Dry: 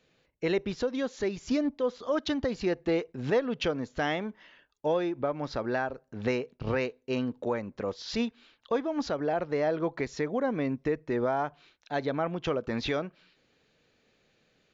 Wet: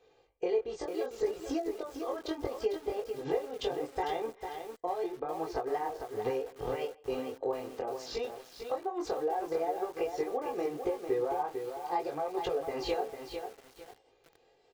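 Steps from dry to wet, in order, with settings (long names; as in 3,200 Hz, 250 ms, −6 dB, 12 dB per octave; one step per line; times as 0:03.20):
pitch shifter swept by a sawtooth +3.5 semitones, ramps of 1,007 ms
flat-topped bell 650 Hz +10.5 dB
downward compressor 12 to 1, threshold −27 dBFS, peak gain reduction 16.5 dB
chorus effect 0.72 Hz, delay 18 ms, depth 5.3 ms
comb filter 2.5 ms, depth 78%
far-end echo of a speakerphone 160 ms, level −25 dB
feedback echo at a low word length 450 ms, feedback 35%, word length 8 bits, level −6.5 dB
level −1.5 dB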